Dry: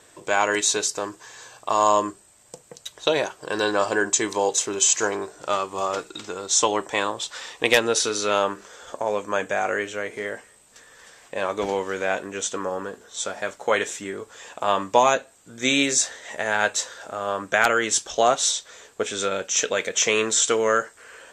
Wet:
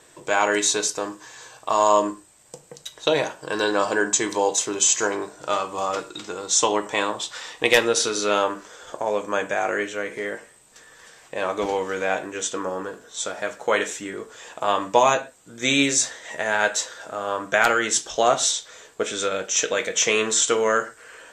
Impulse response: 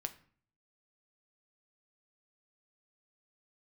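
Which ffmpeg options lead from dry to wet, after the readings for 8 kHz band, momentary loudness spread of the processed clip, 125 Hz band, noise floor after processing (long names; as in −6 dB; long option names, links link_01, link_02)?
+0.5 dB, 14 LU, +0.5 dB, −53 dBFS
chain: -filter_complex "[1:a]atrim=start_sample=2205,atrim=end_sample=6174[link_01];[0:a][link_01]afir=irnorm=-1:irlink=0,volume=2dB"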